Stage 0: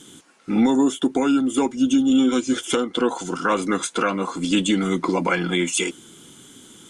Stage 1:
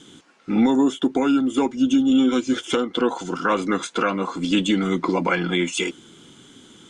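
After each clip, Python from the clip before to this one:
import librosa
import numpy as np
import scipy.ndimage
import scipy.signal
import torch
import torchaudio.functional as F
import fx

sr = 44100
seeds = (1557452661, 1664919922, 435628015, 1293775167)

y = scipy.signal.sosfilt(scipy.signal.butter(2, 5500.0, 'lowpass', fs=sr, output='sos'), x)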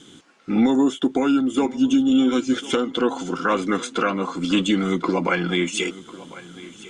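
y = fx.notch(x, sr, hz=930.0, q=20.0)
y = fx.echo_feedback(y, sr, ms=1049, feedback_pct=32, wet_db=-18.5)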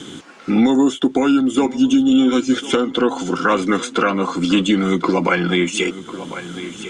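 y = fx.band_squash(x, sr, depth_pct=40)
y = F.gain(torch.from_numpy(y), 4.0).numpy()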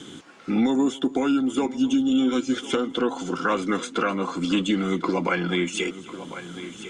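y = x + 10.0 ** (-21.0 / 20.0) * np.pad(x, (int(264 * sr / 1000.0), 0))[:len(x)]
y = F.gain(torch.from_numpy(y), -7.0).numpy()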